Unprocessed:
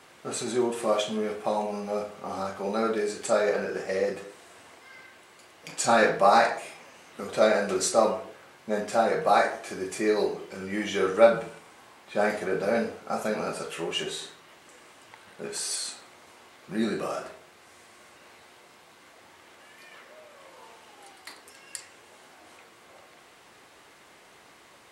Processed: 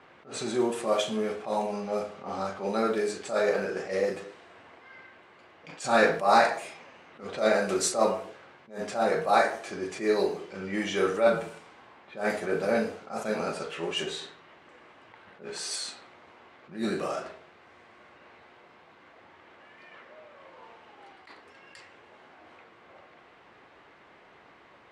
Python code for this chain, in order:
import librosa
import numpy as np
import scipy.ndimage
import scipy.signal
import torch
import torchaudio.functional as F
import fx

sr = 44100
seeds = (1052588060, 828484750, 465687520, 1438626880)

y = fx.env_lowpass(x, sr, base_hz=2300.0, full_db=-23.5)
y = fx.attack_slew(y, sr, db_per_s=160.0)